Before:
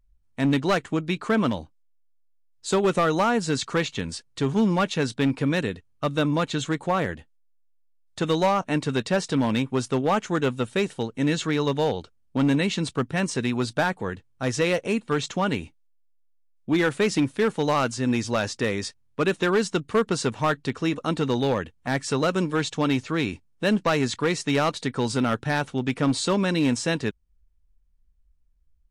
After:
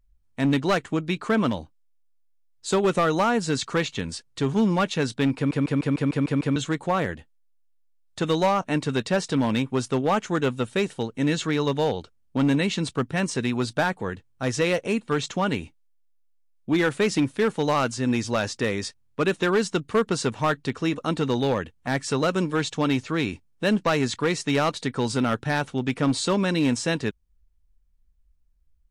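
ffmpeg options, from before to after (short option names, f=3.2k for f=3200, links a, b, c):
-filter_complex "[0:a]asplit=9[a][b][c][d][e][f][g][h][i];[a]atrim=end=5.512[j];[b]atrim=start=5.358:end=5.512[k];[c]atrim=start=5.358:end=5.512[l];[d]atrim=start=5.358:end=5.512[m];[e]atrim=start=5.358:end=5.512[n];[f]atrim=start=5.358:end=5.512[o];[g]atrim=start=5.358:end=5.512[p];[h]atrim=start=5.358:end=5.512[q];[i]atrim=start=6.558[r];[j][k]acrossfade=d=0.004:c1=hsin:c2=hsin[s];[s][l]acrossfade=d=0.004:c1=hsin:c2=hsin[t];[t][m]acrossfade=d=0.004:c1=hsin:c2=hsin[u];[u][n]acrossfade=d=0.004:c1=hsin:c2=hsin[v];[v][o]acrossfade=d=0.004:c1=hsin:c2=hsin[w];[w][p]acrossfade=d=0.004:c1=hsin:c2=hsin[x];[x][q]acrossfade=d=0.004:c1=hsin:c2=hsin[y];[y][r]acrossfade=d=0.004:c1=hsin:c2=hsin"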